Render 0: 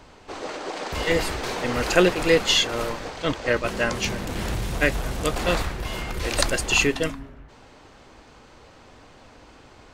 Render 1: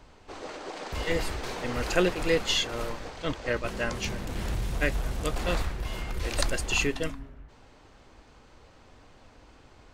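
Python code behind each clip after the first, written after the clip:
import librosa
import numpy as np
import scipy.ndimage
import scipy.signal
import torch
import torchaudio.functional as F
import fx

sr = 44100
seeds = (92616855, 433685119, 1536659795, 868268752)

y = fx.low_shelf(x, sr, hz=80.0, db=8.0)
y = y * 10.0 ** (-7.0 / 20.0)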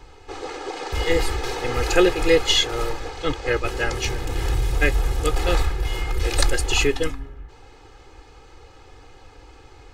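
y = x + 0.88 * np.pad(x, (int(2.4 * sr / 1000.0), 0))[:len(x)]
y = y * 10.0 ** (4.5 / 20.0)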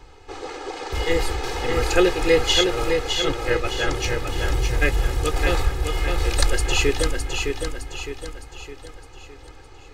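y = fx.echo_feedback(x, sr, ms=611, feedback_pct=46, wet_db=-5.0)
y = y * 10.0 ** (-1.0 / 20.0)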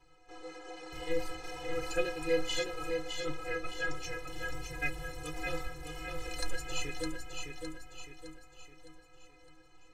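y = fx.stiff_resonator(x, sr, f0_hz=150.0, decay_s=0.31, stiffness=0.03)
y = y * 10.0 ** (-4.0 / 20.0)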